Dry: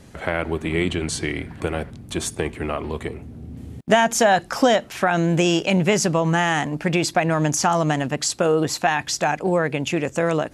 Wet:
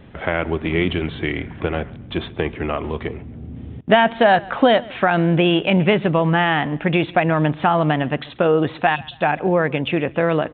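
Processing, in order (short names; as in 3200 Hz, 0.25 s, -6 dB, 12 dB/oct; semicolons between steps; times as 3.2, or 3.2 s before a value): spectral delete 8.96–9.21, 270–2500 Hz; downsampling 8000 Hz; on a send: feedback echo 0.137 s, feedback 34%, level -22.5 dB; on the sum: gain +2.5 dB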